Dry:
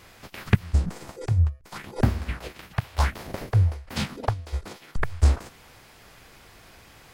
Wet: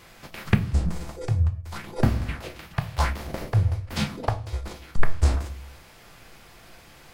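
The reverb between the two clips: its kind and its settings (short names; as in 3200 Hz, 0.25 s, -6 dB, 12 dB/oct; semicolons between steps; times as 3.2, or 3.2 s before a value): shoebox room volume 260 m³, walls furnished, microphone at 0.79 m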